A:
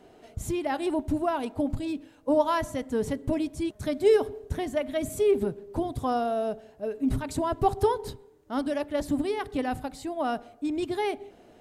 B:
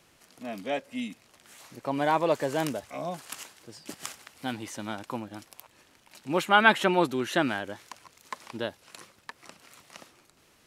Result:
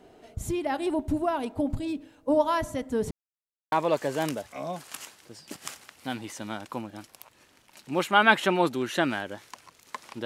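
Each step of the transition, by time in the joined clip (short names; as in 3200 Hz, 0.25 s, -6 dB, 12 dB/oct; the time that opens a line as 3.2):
A
3.11–3.72 mute
3.72 switch to B from 2.1 s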